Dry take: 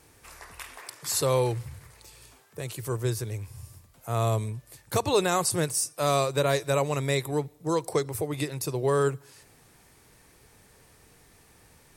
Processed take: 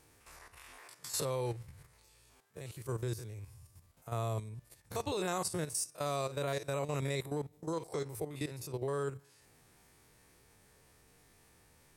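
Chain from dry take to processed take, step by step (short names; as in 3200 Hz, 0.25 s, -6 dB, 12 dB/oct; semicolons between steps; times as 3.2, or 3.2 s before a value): stepped spectrum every 50 ms; level quantiser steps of 10 dB; gain -4.5 dB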